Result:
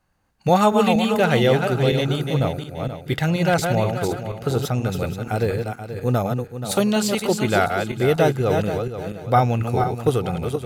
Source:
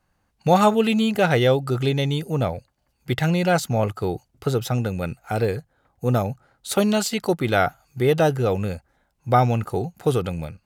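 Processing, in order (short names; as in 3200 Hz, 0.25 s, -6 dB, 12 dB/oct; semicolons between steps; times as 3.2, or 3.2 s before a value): regenerating reverse delay 0.24 s, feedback 51%, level -5 dB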